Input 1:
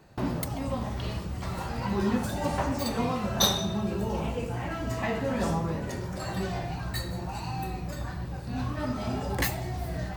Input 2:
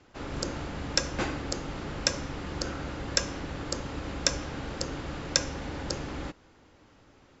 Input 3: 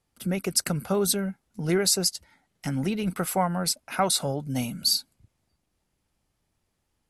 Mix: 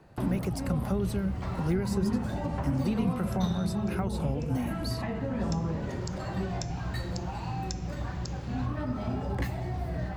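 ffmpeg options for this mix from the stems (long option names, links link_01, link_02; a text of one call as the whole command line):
ffmpeg -i stem1.wav -i stem2.wav -i stem3.wav -filter_complex "[0:a]lowpass=frequency=2100:poles=1,volume=0.5dB[link_01];[1:a]highshelf=frequency=5800:gain=-10.5,crystalizer=i=5:c=0,adelay=2350,volume=-14.5dB[link_02];[2:a]deesser=0.95,volume=-0.5dB,asplit=2[link_03][link_04];[link_04]apad=whole_len=430018[link_05];[link_02][link_05]sidechaincompress=threshold=-41dB:ratio=8:attack=16:release=940[link_06];[link_01][link_06][link_03]amix=inputs=3:normalize=0,acrossover=split=270[link_07][link_08];[link_08]acompressor=threshold=-35dB:ratio=6[link_09];[link_07][link_09]amix=inputs=2:normalize=0" out.wav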